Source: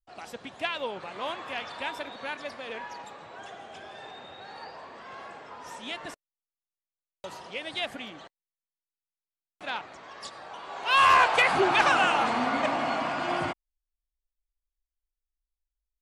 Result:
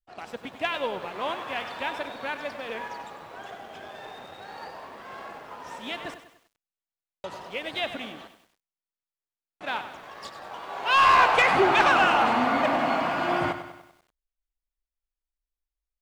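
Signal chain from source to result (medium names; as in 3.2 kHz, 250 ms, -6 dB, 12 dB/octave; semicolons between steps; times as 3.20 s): treble shelf 5.2 kHz -11 dB; waveshaping leveller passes 1; bit-crushed delay 97 ms, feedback 55%, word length 9-bit, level -11 dB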